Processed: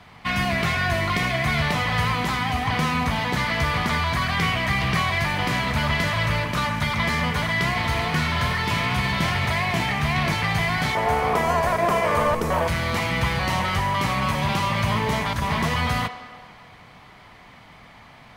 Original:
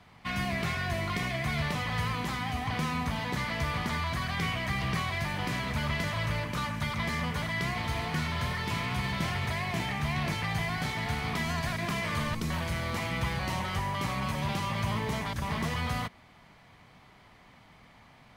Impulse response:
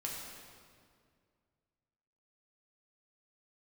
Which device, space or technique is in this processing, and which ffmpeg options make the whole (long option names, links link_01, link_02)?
filtered reverb send: -filter_complex "[0:a]asplit=2[link_01][link_02];[link_02]highpass=440,lowpass=5500[link_03];[1:a]atrim=start_sample=2205[link_04];[link_03][link_04]afir=irnorm=-1:irlink=0,volume=-7.5dB[link_05];[link_01][link_05]amix=inputs=2:normalize=0,asettb=1/sr,asplit=3[link_06][link_07][link_08];[link_06]atrim=end=10.954[link_09];[link_07]atrim=start=10.95:end=12.68,asetpts=PTS-STARTPTS,afade=type=in:duration=0.004:curve=qsin,afade=type=out:start_time=1.726:duration=0.004:curve=qsin,equalizer=frequency=125:width_type=o:width=1:gain=-6,equalizer=frequency=250:width_type=o:width=1:gain=-3,equalizer=frequency=500:width_type=o:width=1:gain=12,equalizer=frequency=1000:width_type=o:width=1:gain=4,equalizer=frequency=2000:width_type=o:width=1:gain=-3,equalizer=frequency=4000:width_type=o:width=1:gain=-9[link_10];[link_08]atrim=start=12.676[link_11];[link_09][link_10]acrossfade=duration=0.004:curve1=hsin:curve2=qsin[link_12];[link_12][link_11]acrossfade=duration=0.004:curve1=qsin:curve2=hsin,volume=7.5dB"